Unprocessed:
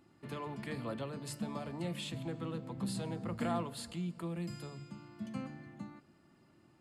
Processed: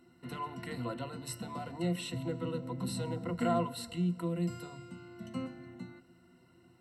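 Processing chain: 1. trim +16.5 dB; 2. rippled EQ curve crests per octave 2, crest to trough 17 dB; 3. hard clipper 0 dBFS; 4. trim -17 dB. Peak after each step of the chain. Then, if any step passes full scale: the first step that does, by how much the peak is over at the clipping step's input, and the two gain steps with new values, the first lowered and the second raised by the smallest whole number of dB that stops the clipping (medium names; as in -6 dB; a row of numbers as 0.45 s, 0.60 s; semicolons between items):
-6.5 dBFS, -1.5 dBFS, -1.5 dBFS, -18.5 dBFS; nothing clips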